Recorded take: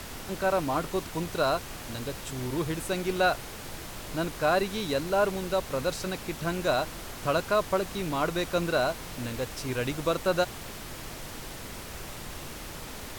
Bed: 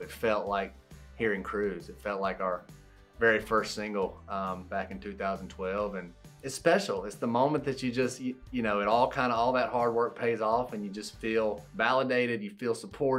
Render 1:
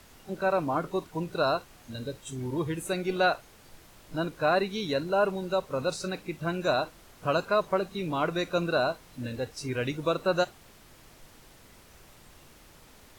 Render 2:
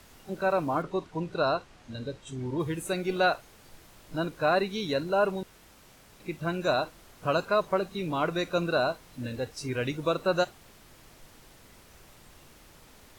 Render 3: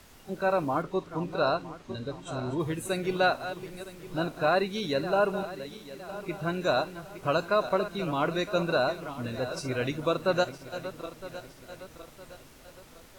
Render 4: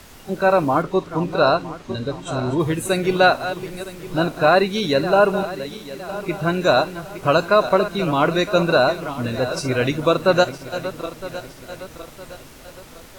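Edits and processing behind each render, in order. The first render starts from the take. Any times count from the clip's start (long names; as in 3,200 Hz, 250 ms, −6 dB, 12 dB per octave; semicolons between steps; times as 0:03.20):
noise reduction from a noise print 14 dB
0:00.82–0:02.60: high-frequency loss of the air 68 metres; 0:05.43–0:06.20: fill with room tone
feedback delay that plays each chunk backwards 481 ms, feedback 63%, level −12 dB
level +10 dB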